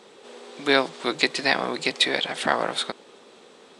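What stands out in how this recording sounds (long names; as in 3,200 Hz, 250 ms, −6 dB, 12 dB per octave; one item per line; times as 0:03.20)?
background noise floor −51 dBFS
spectral slope −2.5 dB per octave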